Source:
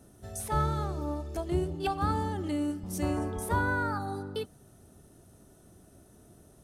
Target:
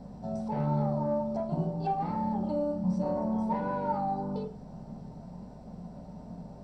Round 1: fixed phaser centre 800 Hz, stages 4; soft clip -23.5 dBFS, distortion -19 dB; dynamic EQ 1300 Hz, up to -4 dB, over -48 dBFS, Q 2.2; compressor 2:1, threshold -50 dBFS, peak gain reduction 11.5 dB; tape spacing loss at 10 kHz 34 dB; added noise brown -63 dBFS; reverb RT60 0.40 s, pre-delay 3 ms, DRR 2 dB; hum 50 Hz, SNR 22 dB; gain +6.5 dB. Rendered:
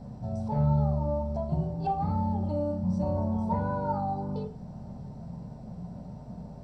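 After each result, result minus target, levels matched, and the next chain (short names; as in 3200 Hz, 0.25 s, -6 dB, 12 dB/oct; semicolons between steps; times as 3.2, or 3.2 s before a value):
soft clip: distortion -9 dB; 125 Hz band +4.0 dB
fixed phaser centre 800 Hz, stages 4; soft clip -31.5 dBFS, distortion -10 dB; dynamic EQ 1300 Hz, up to -4 dB, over -48 dBFS, Q 2.2; compressor 2:1, threshold -50 dBFS, peak gain reduction 9 dB; tape spacing loss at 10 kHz 34 dB; added noise brown -63 dBFS; reverb RT60 0.40 s, pre-delay 3 ms, DRR 2 dB; hum 50 Hz, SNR 22 dB; gain +6.5 dB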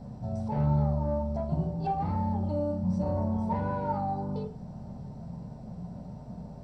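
125 Hz band +4.0 dB
fixed phaser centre 800 Hz, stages 4; soft clip -31.5 dBFS, distortion -10 dB; dynamic EQ 1300 Hz, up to -4 dB, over -48 dBFS, Q 2.2; HPF 170 Hz 24 dB/oct; compressor 2:1, threshold -50 dBFS, peak gain reduction 8.5 dB; tape spacing loss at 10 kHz 34 dB; added noise brown -63 dBFS; reverb RT60 0.40 s, pre-delay 3 ms, DRR 2 dB; hum 50 Hz, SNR 22 dB; gain +6.5 dB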